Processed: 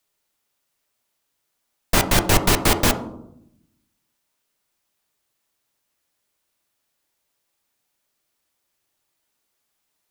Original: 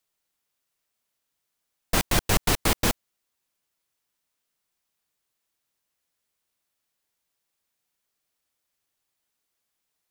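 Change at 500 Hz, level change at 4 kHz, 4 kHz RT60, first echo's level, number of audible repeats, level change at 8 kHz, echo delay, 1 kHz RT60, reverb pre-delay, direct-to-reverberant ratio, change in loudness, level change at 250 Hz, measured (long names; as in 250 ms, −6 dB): +7.0 dB, +5.0 dB, 0.40 s, no echo audible, no echo audible, +5.0 dB, no echo audible, 0.70 s, 3 ms, 6.0 dB, +5.5 dB, +6.5 dB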